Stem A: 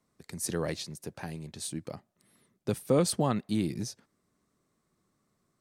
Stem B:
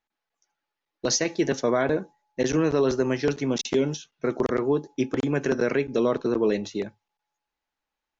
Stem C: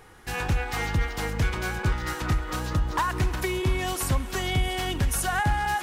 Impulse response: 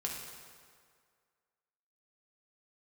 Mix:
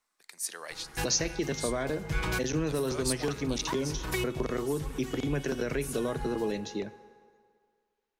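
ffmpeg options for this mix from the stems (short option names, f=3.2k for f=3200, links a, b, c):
-filter_complex "[0:a]highpass=1.1k,volume=-0.5dB,asplit=2[a][b];[b]volume=-19.5dB[c];[1:a]volume=-3.5dB,asplit=3[d][e][f];[e]volume=-17dB[g];[2:a]aecho=1:1:6.2:0.54,adelay=700,volume=-0.5dB,asplit=2[h][i];[i]volume=-21dB[j];[f]apad=whole_len=288221[k];[h][k]sidechaincompress=threshold=-52dB:ratio=3:attack=16:release=155[l];[3:a]atrim=start_sample=2205[m];[c][g][j]amix=inputs=3:normalize=0[n];[n][m]afir=irnorm=-1:irlink=0[o];[a][d][l][o]amix=inputs=4:normalize=0,acrossover=split=150|3000[p][q][r];[q]acompressor=threshold=-31dB:ratio=2.5[s];[p][s][r]amix=inputs=3:normalize=0"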